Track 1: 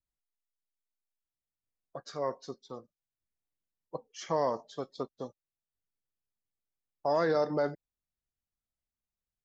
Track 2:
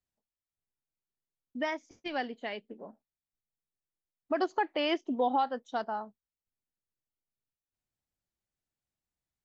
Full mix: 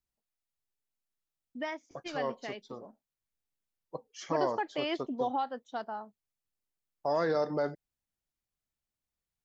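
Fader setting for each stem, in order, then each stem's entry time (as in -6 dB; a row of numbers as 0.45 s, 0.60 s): -1.5 dB, -4.0 dB; 0.00 s, 0.00 s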